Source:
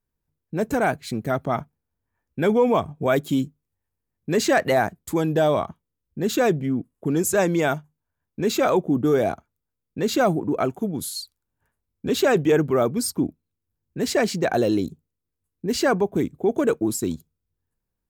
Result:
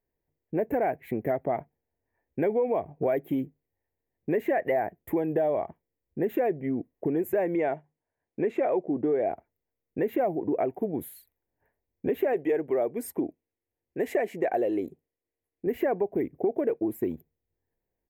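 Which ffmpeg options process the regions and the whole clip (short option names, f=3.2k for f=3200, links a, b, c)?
-filter_complex "[0:a]asettb=1/sr,asplit=3[a][b][c];[a]atrim=end=7.554[d];[b]atrim=start=7.55:end=9.31,asetpts=PTS-STARTPTS,afade=t=in:d=0.004:c=qsin,afade=t=out:st=1.756:d=0.004:c=qsin,lowpass=f=8.7k:w=0.5412,lowpass=f=8.7k:w=1.3066,lowshelf=f=94:g=-10[e];[c]atrim=start=9.306[f];[d][e]acrossfade=d=0.004:c1=hsin:c2=qsin[g];[g][f]acrossfade=d=0.004:c1=qsin:c2=hsin,asettb=1/sr,asplit=3[h][i][j];[h]atrim=end=12.334[k];[i]atrim=start=12.33:end=15.67,asetpts=PTS-STARTPTS,afade=t=in:d=0.004:c=qsin,afade=t=out:st=3.336:d=0.004:c=qsin,lowpass=7.6k,bass=f=250:g=-8,treble=f=4k:g=13[l];[j]atrim=start=15.666[m];[k][l]acrossfade=d=0.004:c1=hsin:c2=qsin[n];[n][m]acrossfade=d=0.004:c1=qsin:c2=hsin,firequalizer=gain_entry='entry(190,0);entry(360,10);entry(710,11);entry(1300,-7);entry(1900,10);entry(4500,-29);entry(9100,-15);entry(13000,3)':delay=0.05:min_phase=1,acompressor=threshold=-20dB:ratio=4,volume=-5dB"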